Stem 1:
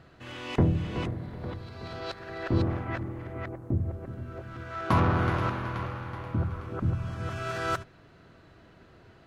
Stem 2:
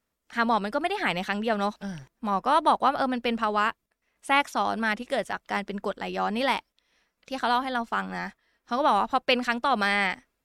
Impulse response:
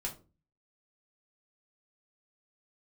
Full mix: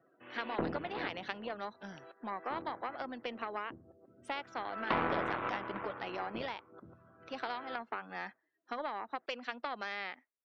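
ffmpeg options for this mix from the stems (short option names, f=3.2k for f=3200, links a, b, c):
-filter_complex "[0:a]lowpass=2.7k,volume=2.5dB,afade=t=out:st=1:d=0.57:silence=0.334965,afade=t=in:st=4.09:d=0.66:silence=0.316228,afade=t=out:st=6.23:d=0.34:silence=0.298538[a];[1:a]acompressor=threshold=-30dB:ratio=16,volume=-5.5dB[b];[a][b]amix=inputs=2:normalize=0,aeval=exprs='0.141*(cos(1*acos(clip(val(0)/0.141,-1,1)))-cos(1*PI/2))+0.0708*(cos(2*acos(clip(val(0)/0.141,-1,1)))-cos(2*PI/2))+0.0631*(cos(4*acos(clip(val(0)/0.141,-1,1)))-cos(4*PI/2))':c=same,acrossover=split=220 5700:gain=0.0891 1 0.178[c][d][e];[c][d][e]amix=inputs=3:normalize=0,afftdn=nr=21:nf=-62"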